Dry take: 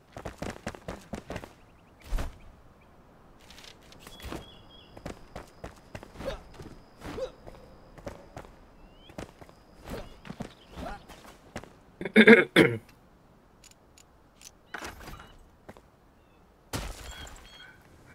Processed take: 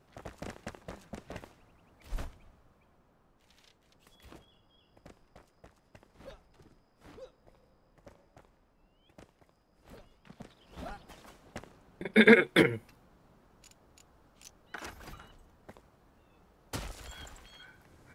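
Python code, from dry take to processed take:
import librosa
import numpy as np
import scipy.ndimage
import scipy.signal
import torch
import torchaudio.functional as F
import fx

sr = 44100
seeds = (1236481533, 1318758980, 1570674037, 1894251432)

y = fx.gain(x, sr, db=fx.line((2.25, -6.0), (3.58, -14.0), (10.14, -14.0), (10.83, -4.0)))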